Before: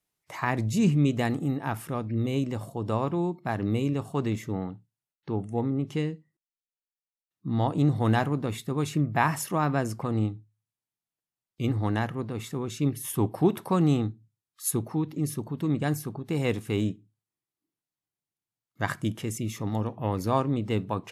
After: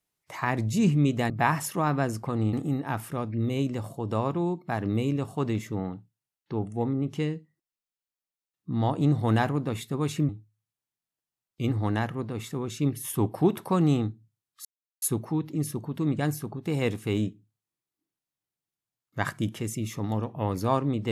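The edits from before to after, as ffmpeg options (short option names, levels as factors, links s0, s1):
-filter_complex "[0:a]asplit=5[s0][s1][s2][s3][s4];[s0]atrim=end=1.302[s5];[s1]atrim=start=9.058:end=10.292[s6];[s2]atrim=start=1.298:end=9.062[s7];[s3]atrim=start=10.288:end=14.65,asetpts=PTS-STARTPTS,afade=t=out:st=4.358:d=0.004:c=hsin,apad=pad_dur=0.37[s8];[s4]atrim=start=14.65,asetpts=PTS-STARTPTS,afade=t=in:d=0.004:c=hsin[s9];[s5][s6]acrossfade=d=0.004:c1=hsin:c2=hsin[s10];[s10][s7]acrossfade=d=0.004:c1=hsin:c2=hsin[s11];[s8][s9]concat=n=2:v=0:a=1[s12];[s11][s12]acrossfade=d=0.004:c1=hsin:c2=hsin"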